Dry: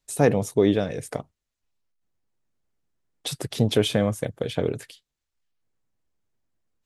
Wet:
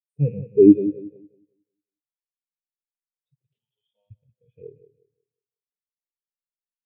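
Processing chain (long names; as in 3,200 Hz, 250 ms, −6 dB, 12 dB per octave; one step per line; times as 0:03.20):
loose part that buzzes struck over −27 dBFS, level −18 dBFS
in parallel at −1 dB: output level in coarse steps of 20 dB
on the sum: harmonic and percussive parts rebalanced percussive −17 dB
0:03.58–0:04.11: pair of resonant band-passes 1,700 Hz, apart 1.8 octaves
repeating echo 181 ms, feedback 57%, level −6 dB
on a send at −18 dB: convolution reverb RT60 1.1 s, pre-delay 4 ms
on the sum: every bin expanded away from the loudest bin 2.5 to 1
level +4.5 dB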